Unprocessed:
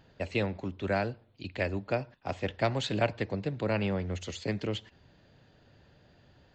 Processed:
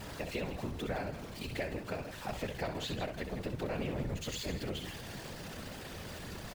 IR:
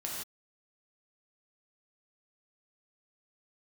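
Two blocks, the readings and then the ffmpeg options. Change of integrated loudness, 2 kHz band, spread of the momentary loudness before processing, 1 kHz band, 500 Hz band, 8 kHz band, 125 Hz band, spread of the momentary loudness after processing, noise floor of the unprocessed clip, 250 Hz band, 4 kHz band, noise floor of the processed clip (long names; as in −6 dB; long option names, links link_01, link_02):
−6.5 dB, −5.5 dB, 7 LU, −6.0 dB, −6.5 dB, +3.0 dB, −5.5 dB, 7 LU, −63 dBFS, −5.5 dB, −2.0 dB, −46 dBFS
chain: -filter_complex "[0:a]aeval=exprs='val(0)+0.5*0.0133*sgn(val(0))':channel_layout=same,acompressor=threshold=-33dB:ratio=4,asplit=2[link_01][link_02];[link_02]aecho=0:1:64.14|160.3:0.398|0.282[link_03];[link_01][link_03]amix=inputs=2:normalize=0,afftfilt=real='hypot(re,im)*cos(2*PI*random(0))':imag='hypot(re,im)*sin(2*PI*random(1))':win_size=512:overlap=0.75,volume=3.5dB"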